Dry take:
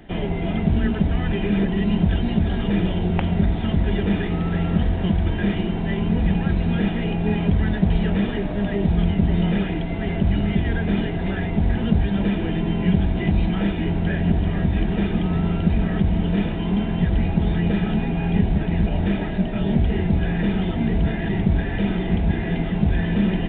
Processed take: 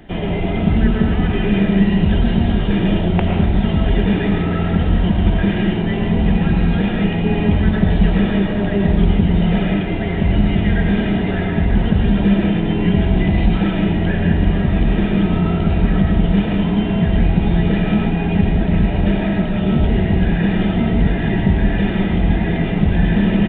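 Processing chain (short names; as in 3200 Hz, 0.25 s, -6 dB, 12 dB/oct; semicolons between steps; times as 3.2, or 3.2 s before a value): on a send: echo 1.136 s -22.5 dB; on the sum: digital reverb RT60 0.81 s, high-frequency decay 0.7×, pre-delay 70 ms, DRR 0.5 dB; gain +3 dB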